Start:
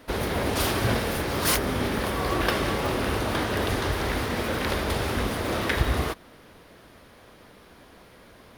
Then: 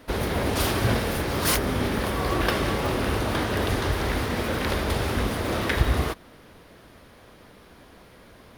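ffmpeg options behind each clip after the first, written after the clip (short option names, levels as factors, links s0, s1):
-af "lowshelf=f=220:g=3"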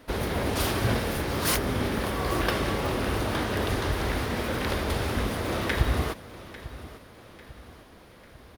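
-af "aecho=1:1:847|1694|2541|3388:0.15|0.0688|0.0317|0.0146,volume=0.75"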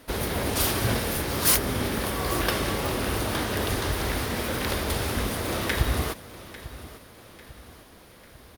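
-af "aemphasis=mode=production:type=cd"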